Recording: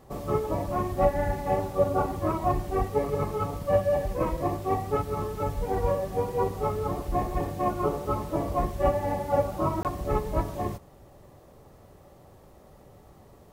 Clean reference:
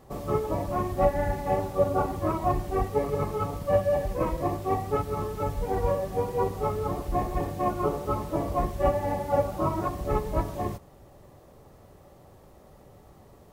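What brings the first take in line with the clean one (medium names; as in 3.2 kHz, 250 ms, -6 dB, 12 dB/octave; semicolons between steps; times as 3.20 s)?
interpolate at 9.83 s, 18 ms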